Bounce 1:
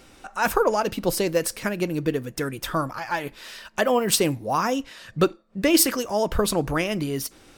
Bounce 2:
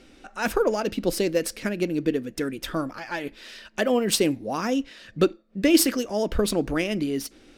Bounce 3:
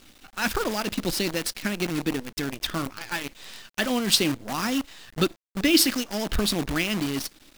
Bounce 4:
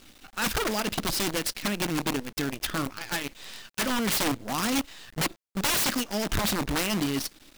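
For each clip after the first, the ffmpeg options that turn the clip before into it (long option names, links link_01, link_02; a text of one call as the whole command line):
ffmpeg -i in.wav -af "equalizer=frequency=125:width_type=o:width=1:gain=-9,equalizer=frequency=250:width_type=o:width=1:gain=5,equalizer=frequency=1000:width_type=o:width=1:gain=-9,equalizer=frequency=8000:width_type=o:width=1:gain=-3,equalizer=frequency=16000:width_type=o:width=1:gain=6,adynamicsmooth=sensitivity=4.5:basefreq=6600" out.wav
ffmpeg -i in.wav -af "equalizer=frequency=500:width_type=o:width=1:gain=-11,equalizer=frequency=4000:width_type=o:width=1:gain=6,equalizer=frequency=8000:width_type=o:width=1:gain=-3,acrusher=bits=6:dc=4:mix=0:aa=0.000001,volume=1.5dB" out.wav
ffmpeg -i in.wav -af "aeval=exprs='(mod(10*val(0)+1,2)-1)/10':channel_layout=same" out.wav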